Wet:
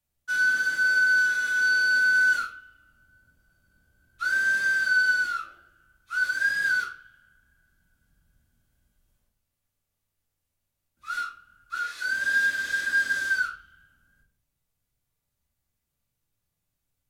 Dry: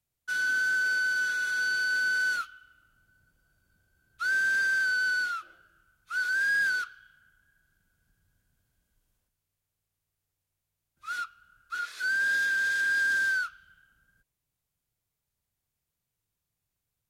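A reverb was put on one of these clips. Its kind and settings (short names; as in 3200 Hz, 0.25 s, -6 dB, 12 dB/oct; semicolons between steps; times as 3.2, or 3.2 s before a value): shoebox room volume 310 m³, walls furnished, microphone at 2.4 m; gain -1.5 dB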